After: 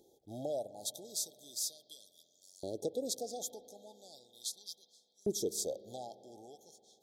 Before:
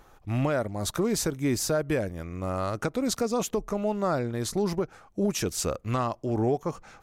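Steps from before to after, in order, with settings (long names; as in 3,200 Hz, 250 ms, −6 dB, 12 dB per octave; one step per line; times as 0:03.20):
brick-wall band-stop 870–3,200 Hz
auto-filter high-pass saw up 0.38 Hz 370–5,900 Hz
guitar amp tone stack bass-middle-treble 10-0-1
spring reverb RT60 3.4 s, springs 48 ms, chirp 60 ms, DRR 15.5 dB
level +14.5 dB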